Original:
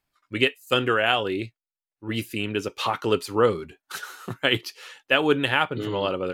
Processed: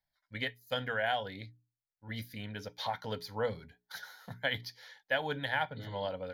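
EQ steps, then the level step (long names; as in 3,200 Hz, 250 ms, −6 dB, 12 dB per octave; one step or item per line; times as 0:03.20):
mains-hum notches 60/120/180/240/300/360/420 Hz
phaser with its sweep stopped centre 1,800 Hz, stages 8
−7.0 dB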